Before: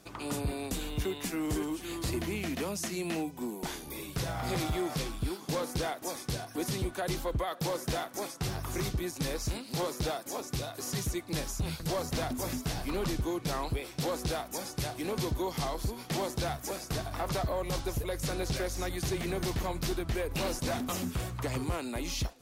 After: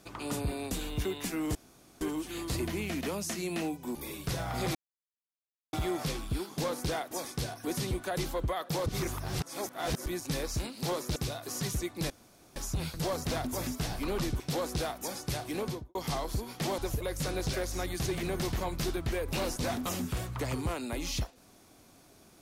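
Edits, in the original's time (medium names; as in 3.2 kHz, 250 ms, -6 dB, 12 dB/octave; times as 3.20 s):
1.55 s: insert room tone 0.46 s
3.49–3.84 s: delete
4.64 s: insert silence 0.98 s
7.77–8.97 s: reverse
10.07–10.48 s: delete
11.42 s: insert room tone 0.46 s
13.26–13.90 s: delete
15.08–15.45 s: studio fade out
16.28–17.81 s: delete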